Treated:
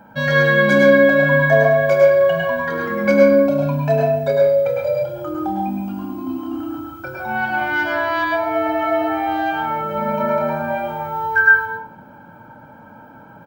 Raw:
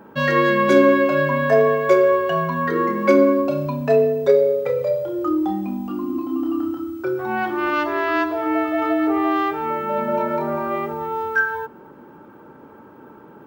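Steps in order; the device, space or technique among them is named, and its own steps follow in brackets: microphone above a desk (comb 1.3 ms, depth 90%; reverb RT60 0.55 s, pre-delay 98 ms, DRR -1 dB); gain -2.5 dB

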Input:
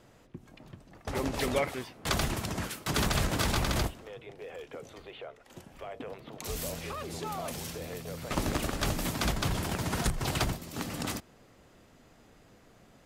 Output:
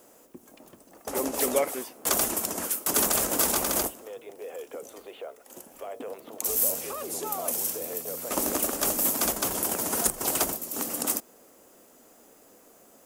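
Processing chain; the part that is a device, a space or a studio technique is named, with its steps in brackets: turntable without a phono preamp (RIAA curve recording; white noise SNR 35 dB); graphic EQ 125/250/500/2000/4000 Hz -9/+6/+5/-6/-10 dB; gain +2.5 dB

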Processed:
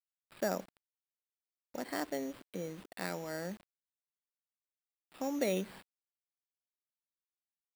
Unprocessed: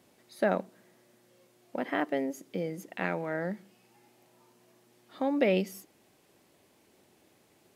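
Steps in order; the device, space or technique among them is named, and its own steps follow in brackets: early 8-bit sampler (sample-rate reducer 6300 Hz, jitter 0%; bit-crush 8-bit); gain -7 dB

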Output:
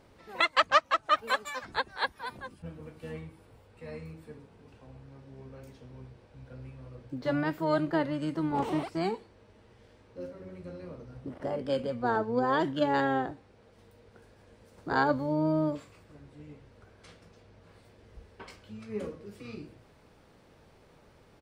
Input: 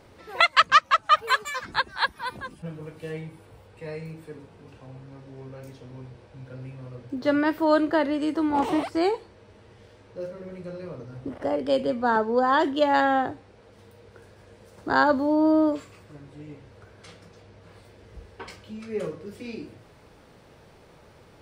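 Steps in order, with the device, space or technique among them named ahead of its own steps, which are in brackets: octave pedal (harmoniser -12 st -7 dB); gain -7 dB

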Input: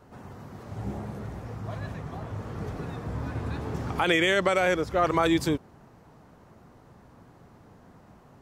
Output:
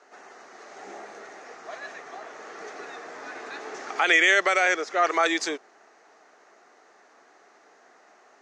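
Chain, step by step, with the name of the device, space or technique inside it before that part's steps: phone speaker on a table (speaker cabinet 450–6900 Hz, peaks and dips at 530 Hz -9 dB, 970 Hz -9 dB, 1900 Hz +4 dB, 3200 Hz -4 dB, 6400 Hz +7 dB); gain +5.5 dB

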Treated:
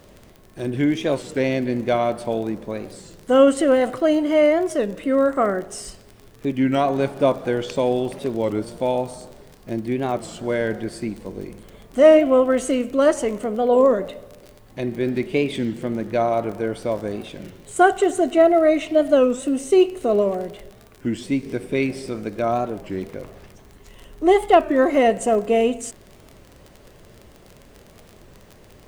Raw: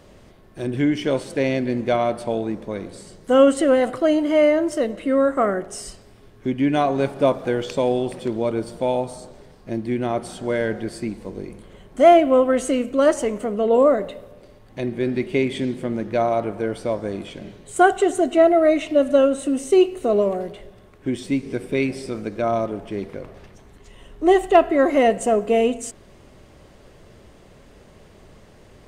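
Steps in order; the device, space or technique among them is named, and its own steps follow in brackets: warped LP (record warp 33 1/3 rpm, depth 160 cents; crackle 35/s -31 dBFS; white noise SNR 45 dB)

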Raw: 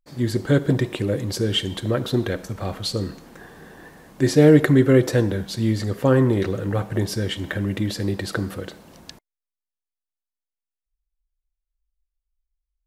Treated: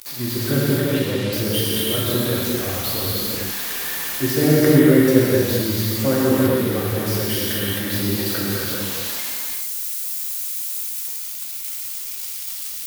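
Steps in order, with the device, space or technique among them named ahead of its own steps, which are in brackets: budget class-D amplifier (switching dead time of 0.061 ms; switching spikes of -11.5 dBFS); 0.78–1.33 LPF 6900 Hz 12 dB/oct; non-linear reverb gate 0.47 s flat, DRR -7 dB; gain -6.5 dB

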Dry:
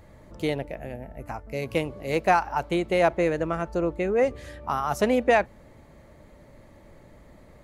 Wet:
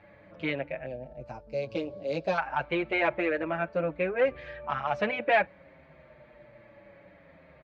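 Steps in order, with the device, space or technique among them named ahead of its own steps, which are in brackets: barber-pole flanger into a guitar amplifier (endless flanger 6.6 ms -0.59 Hz; soft clip -19 dBFS, distortion -15 dB; speaker cabinet 90–3700 Hz, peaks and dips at 96 Hz -9 dB, 240 Hz -6 dB, 410 Hz -5 dB, 580 Hz +6 dB, 1600 Hz +7 dB, 2400 Hz +9 dB); 0.86–2.38 EQ curve 560 Hz 0 dB, 2000 Hz -17 dB, 4900 Hz +10 dB

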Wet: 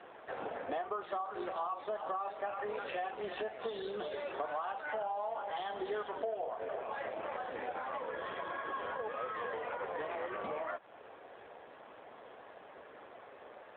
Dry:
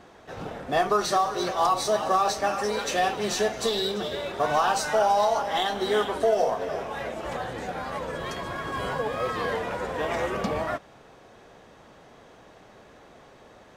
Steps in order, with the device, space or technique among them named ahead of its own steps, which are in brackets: voicemail (BPF 380–3100 Hz; compressor 6:1, threshold -37 dBFS, peak gain reduction 17 dB; gain +2 dB; AMR-NB 7.4 kbps 8000 Hz)

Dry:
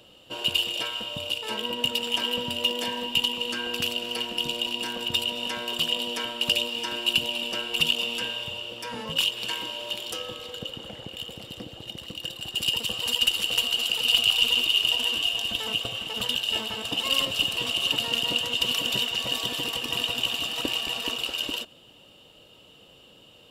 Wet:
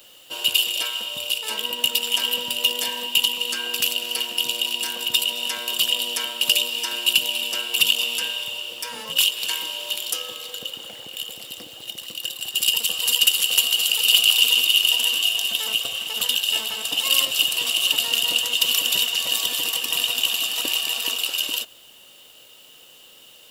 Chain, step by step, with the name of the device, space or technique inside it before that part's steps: turntable without a phono preamp (RIAA curve recording; white noise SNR 32 dB)

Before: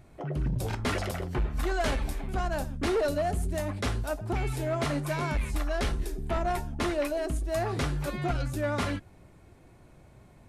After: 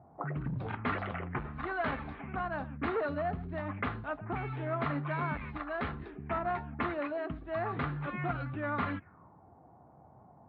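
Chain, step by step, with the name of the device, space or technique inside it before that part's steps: envelope filter bass rig (envelope low-pass 710–4100 Hz up, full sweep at -26.5 dBFS; speaker cabinet 84–2000 Hz, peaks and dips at 110 Hz -5 dB, 370 Hz -6 dB, 570 Hz -6 dB, 1200 Hz +5 dB); gain -2.5 dB

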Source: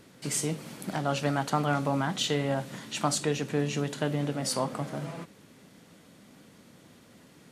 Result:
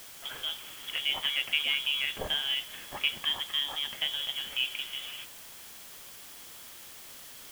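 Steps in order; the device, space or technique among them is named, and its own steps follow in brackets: scrambled radio voice (BPF 320–2900 Hz; inverted band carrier 3600 Hz; white noise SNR 13 dB)

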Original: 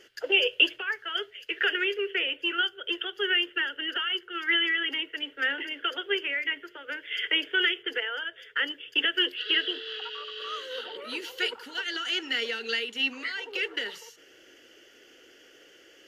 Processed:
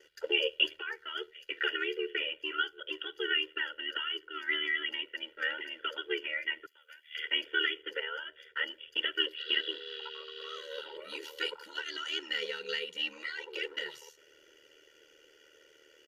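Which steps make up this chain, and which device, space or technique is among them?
6.66–7.15 differentiator; ring-modulated robot voice (ring modulator 38 Hz; comb 2.1 ms, depth 78%); gain -5.5 dB

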